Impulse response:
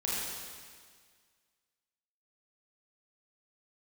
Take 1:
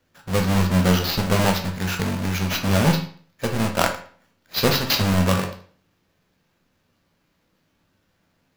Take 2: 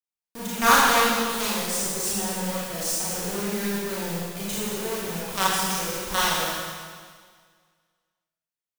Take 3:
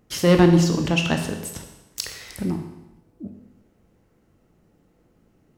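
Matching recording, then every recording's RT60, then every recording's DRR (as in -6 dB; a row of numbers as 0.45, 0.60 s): 2; 0.50, 1.8, 0.95 s; 2.5, -7.0, 4.0 dB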